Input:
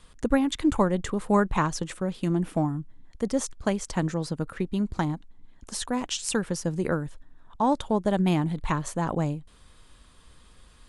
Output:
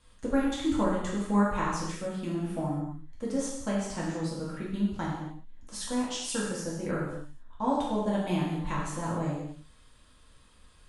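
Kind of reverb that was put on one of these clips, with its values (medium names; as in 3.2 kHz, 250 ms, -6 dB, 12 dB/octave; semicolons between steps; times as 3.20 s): gated-style reverb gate 310 ms falling, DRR -6.5 dB; trim -11 dB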